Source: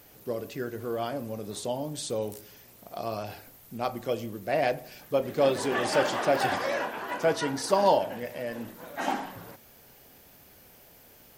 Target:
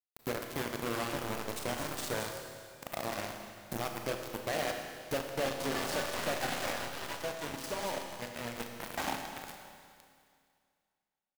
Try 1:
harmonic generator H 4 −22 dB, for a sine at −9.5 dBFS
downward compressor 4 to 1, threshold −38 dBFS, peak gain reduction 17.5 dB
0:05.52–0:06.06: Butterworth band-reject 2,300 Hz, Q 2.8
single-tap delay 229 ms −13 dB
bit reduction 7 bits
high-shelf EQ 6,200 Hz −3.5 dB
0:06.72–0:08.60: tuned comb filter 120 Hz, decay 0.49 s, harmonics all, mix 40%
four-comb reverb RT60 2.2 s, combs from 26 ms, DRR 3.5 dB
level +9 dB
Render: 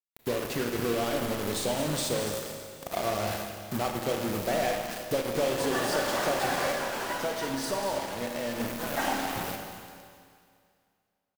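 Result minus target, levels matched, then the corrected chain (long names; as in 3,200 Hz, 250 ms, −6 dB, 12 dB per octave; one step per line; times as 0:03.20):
downward compressor: peak gain reduction −7 dB
harmonic generator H 4 −22 dB, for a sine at −9.5 dBFS
downward compressor 4 to 1, threshold −47 dBFS, peak gain reduction 24.5 dB
0:05.52–0:06.06: Butterworth band-reject 2,300 Hz, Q 2.8
single-tap delay 229 ms −13 dB
bit reduction 7 bits
high-shelf EQ 6,200 Hz −3.5 dB
0:06.72–0:08.60: tuned comb filter 120 Hz, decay 0.49 s, harmonics all, mix 40%
four-comb reverb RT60 2.2 s, combs from 26 ms, DRR 3.5 dB
level +9 dB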